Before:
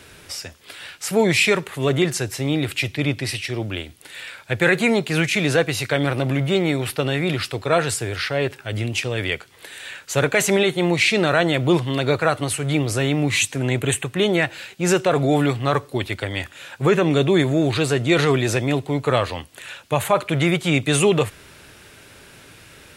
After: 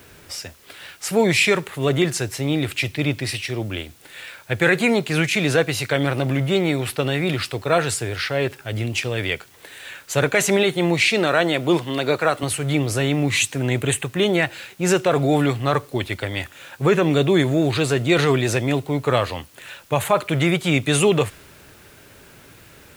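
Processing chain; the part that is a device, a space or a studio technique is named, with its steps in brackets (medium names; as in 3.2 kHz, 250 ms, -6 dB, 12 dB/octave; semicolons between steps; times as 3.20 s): 11.08–12.43 s: high-pass 190 Hz 12 dB/octave; plain cassette with noise reduction switched in (tape noise reduction on one side only decoder only; wow and flutter 26 cents; white noise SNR 32 dB)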